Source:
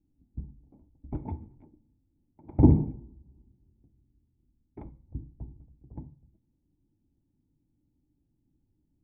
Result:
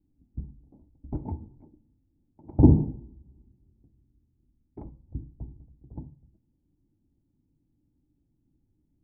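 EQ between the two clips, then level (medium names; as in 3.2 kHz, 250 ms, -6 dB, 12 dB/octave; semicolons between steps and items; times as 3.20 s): low-pass 1 kHz 12 dB/octave; +2.0 dB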